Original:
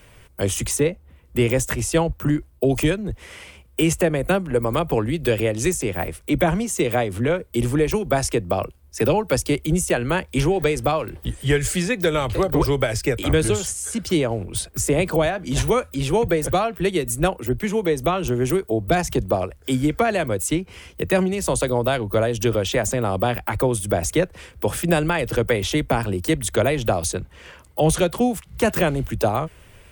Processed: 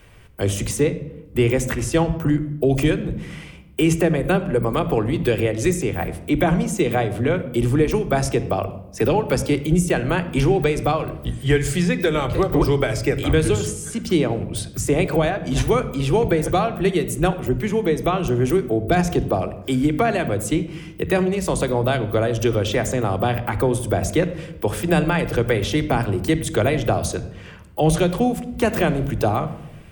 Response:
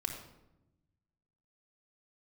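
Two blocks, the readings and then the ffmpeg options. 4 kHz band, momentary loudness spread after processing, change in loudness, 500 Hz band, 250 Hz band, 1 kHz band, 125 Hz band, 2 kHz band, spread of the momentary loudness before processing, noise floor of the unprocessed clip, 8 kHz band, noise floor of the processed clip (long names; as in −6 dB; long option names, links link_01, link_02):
−1.0 dB, 7 LU, +1.0 dB, +0.5 dB, +2.0 dB, +1.0 dB, +2.5 dB, 0.0 dB, 6 LU, −50 dBFS, −4.0 dB, −39 dBFS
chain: -filter_complex "[0:a]asplit=2[link_01][link_02];[link_02]equalizer=frequency=190:width=1.8:gain=7.5[link_03];[1:a]atrim=start_sample=2205,lowpass=6000[link_04];[link_03][link_04]afir=irnorm=-1:irlink=0,volume=-5dB[link_05];[link_01][link_05]amix=inputs=2:normalize=0,volume=-3.5dB"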